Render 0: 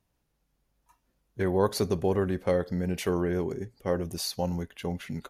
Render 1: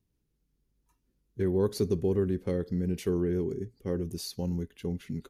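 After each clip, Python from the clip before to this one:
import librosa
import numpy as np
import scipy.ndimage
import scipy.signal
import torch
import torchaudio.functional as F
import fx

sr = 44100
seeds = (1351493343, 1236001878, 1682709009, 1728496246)

y = fx.curve_eq(x, sr, hz=(420.0, 620.0, 4700.0), db=(0, -15, -6))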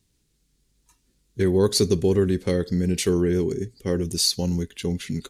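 y = fx.graphic_eq(x, sr, hz=(2000, 4000, 8000), db=(4, 8, 12))
y = y * librosa.db_to_amplitude(7.0)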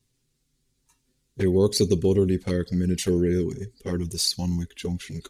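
y = fx.env_flanger(x, sr, rest_ms=7.9, full_db=-16.0)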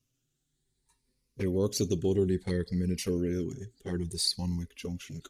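y = fx.spec_ripple(x, sr, per_octave=0.89, drift_hz=0.6, depth_db=8)
y = y * librosa.db_to_amplitude(-7.0)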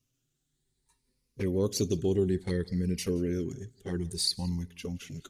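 y = x + 10.0 ** (-23.5 / 20.0) * np.pad(x, (int(172 * sr / 1000.0), 0))[:len(x)]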